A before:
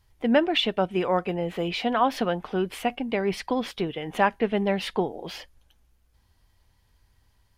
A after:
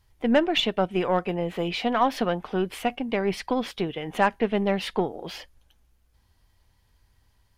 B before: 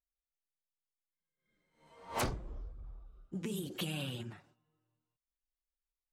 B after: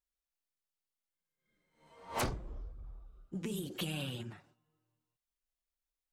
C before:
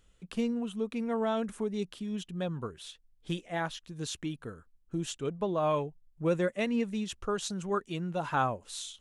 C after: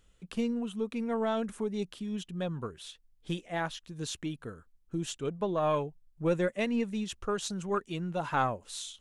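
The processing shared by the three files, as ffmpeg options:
-af "aeval=exprs='0.398*(cos(1*acos(clip(val(0)/0.398,-1,1)))-cos(1*PI/2))+0.0141*(cos(6*acos(clip(val(0)/0.398,-1,1)))-cos(6*PI/2))':channel_layout=same"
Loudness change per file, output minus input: 0.0, 0.0, 0.0 LU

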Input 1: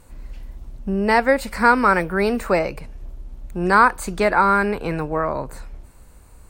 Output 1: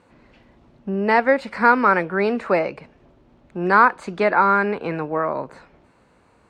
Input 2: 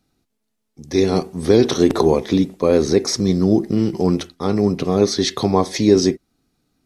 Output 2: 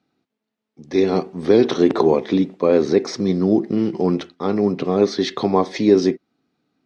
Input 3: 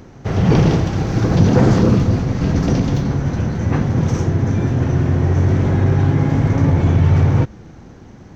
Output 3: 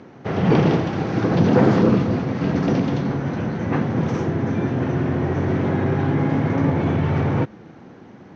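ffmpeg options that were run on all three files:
-af "highpass=180,lowpass=3400"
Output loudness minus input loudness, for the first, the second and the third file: −0.5, −1.0, −4.5 LU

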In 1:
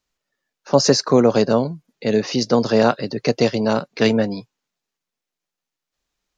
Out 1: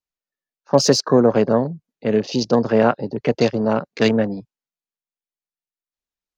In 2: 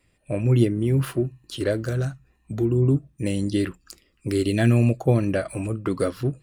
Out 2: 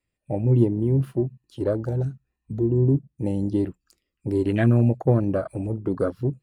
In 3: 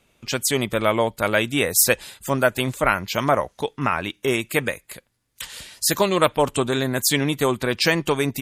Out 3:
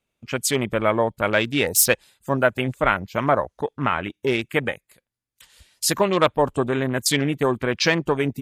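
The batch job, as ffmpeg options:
-af "afwtdn=0.0316"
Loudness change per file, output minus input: 0.0, 0.0, −0.5 LU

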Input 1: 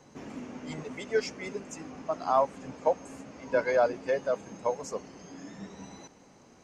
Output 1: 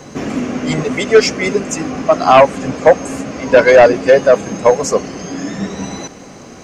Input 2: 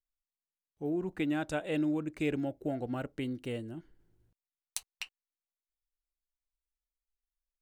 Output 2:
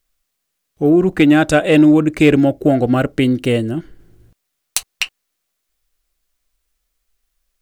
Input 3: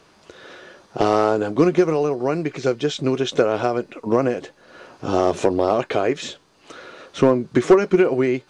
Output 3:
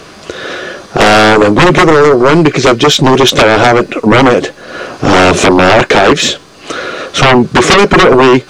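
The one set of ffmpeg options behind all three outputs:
-af "bandreject=frequency=900:width=7.3,aeval=exprs='0.668*sin(PI/2*5.62*val(0)/0.668)':channel_layout=same,volume=2.5dB"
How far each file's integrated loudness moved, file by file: +18.5, +21.0, +13.5 LU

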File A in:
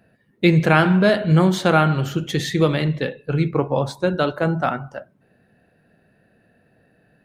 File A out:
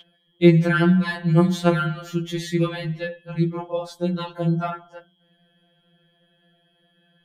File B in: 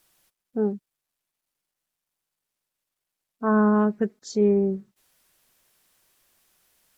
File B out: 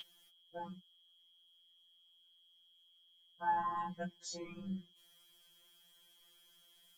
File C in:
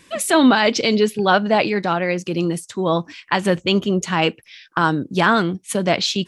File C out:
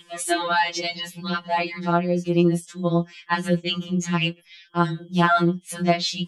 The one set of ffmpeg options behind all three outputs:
-af "aeval=exprs='val(0)+0.0562*sin(2*PI*3200*n/s)':channel_layout=same,afftfilt=real='re*2.83*eq(mod(b,8),0)':imag='im*2.83*eq(mod(b,8),0)':win_size=2048:overlap=0.75,volume=-3dB"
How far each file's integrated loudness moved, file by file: −2.5, −17.5, −4.5 LU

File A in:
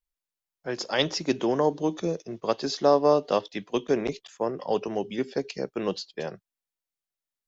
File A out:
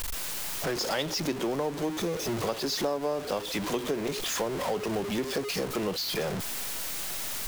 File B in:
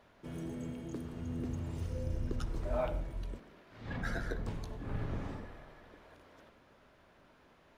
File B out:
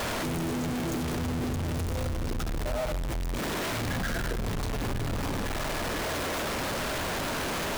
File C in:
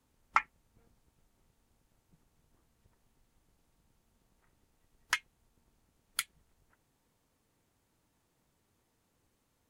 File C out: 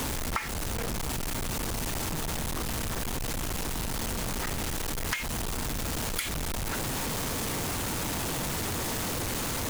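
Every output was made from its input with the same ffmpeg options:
-af "aeval=exprs='val(0)+0.5*0.0562*sgn(val(0))':channel_layout=same,acompressor=threshold=-28dB:ratio=4"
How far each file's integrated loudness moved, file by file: −3.0, +9.0, +4.0 LU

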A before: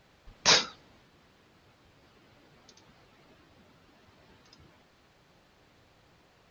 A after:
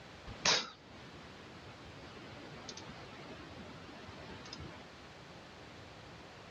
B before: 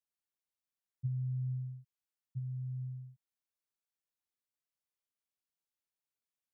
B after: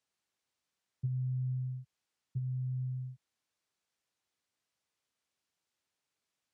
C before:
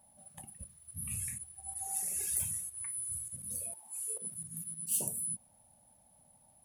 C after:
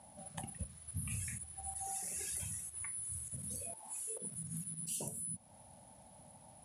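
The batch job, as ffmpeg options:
-af "highpass=frequency=57:width=0.5412,highpass=frequency=57:width=1.3066,acompressor=threshold=-47dB:ratio=2.5,lowpass=7600,volume=10dB"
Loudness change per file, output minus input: −16.5, +2.0, −5.5 LU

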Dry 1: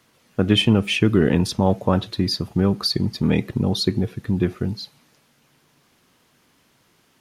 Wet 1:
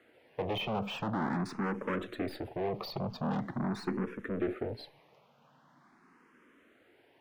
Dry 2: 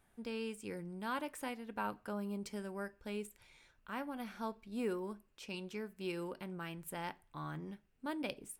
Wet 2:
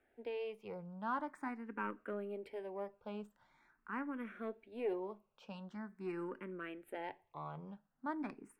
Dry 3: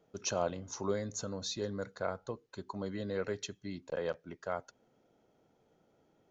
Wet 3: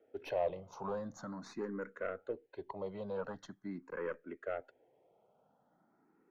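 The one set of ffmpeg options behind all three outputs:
-filter_complex "[0:a]aeval=exprs='(tanh(28.2*val(0)+0.45)-tanh(0.45))/28.2':channel_layout=same,acrossover=split=190 2400:gain=0.2 1 0.0891[link_01][link_02][link_03];[link_01][link_02][link_03]amix=inputs=3:normalize=0,asplit=2[link_04][link_05];[link_05]afreqshift=0.44[link_06];[link_04][link_06]amix=inputs=2:normalize=1,volume=5dB"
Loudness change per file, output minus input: −15.0, −1.5, −3.5 LU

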